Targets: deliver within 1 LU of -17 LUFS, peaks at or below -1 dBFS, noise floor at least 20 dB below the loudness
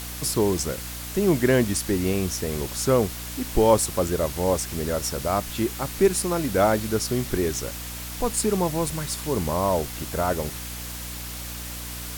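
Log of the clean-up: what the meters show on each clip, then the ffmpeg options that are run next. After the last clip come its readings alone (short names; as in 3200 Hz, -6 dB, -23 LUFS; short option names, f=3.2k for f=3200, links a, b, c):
hum 60 Hz; harmonics up to 300 Hz; hum level -36 dBFS; noise floor -35 dBFS; noise floor target -45 dBFS; loudness -25.0 LUFS; peak -6.0 dBFS; loudness target -17.0 LUFS
-> -af "bandreject=f=60:t=h:w=6,bandreject=f=120:t=h:w=6,bandreject=f=180:t=h:w=6,bandreject=f=240:t=h:w=6,bandreject=f=300:t=h:w=6"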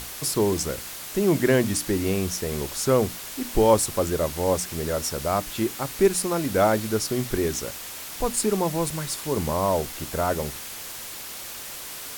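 hum none; noise floor -37 dBFS; noise floor target -45 dBFS
-> -af "afftdn=nr=8:nf=-37"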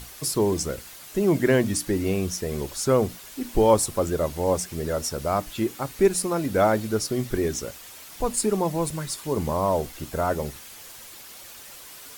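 noise floor -44 dBFS; noise floor target -45 dBFS
-> -af "afftdn=nr=6:nf=-44"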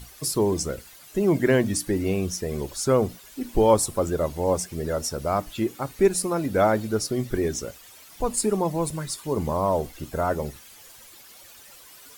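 noise floor -48 dBFS; loudness -25.0 LUFS; peak -6.5 dBFS; loudness target -17.0 LUFS
-> -af "volume=8dB,alimiter=limit=-1dB:level=0:latency=1"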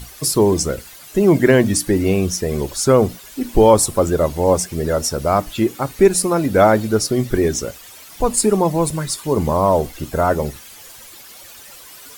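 loudness -17.0 LUFS; peak -1.0 dBFS; noise floor -40 dBFS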